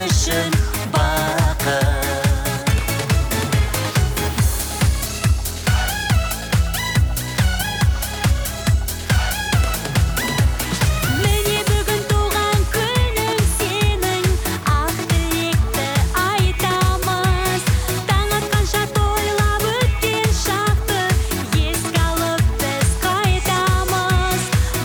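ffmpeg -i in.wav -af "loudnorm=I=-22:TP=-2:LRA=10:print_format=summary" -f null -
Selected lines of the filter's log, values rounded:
Input Integrated:    -18.6 LUFS
Input True Peak:      -7.3 dBTP
Input LRA:             1.4 LU
Input Threshold:     -28.6 LUFS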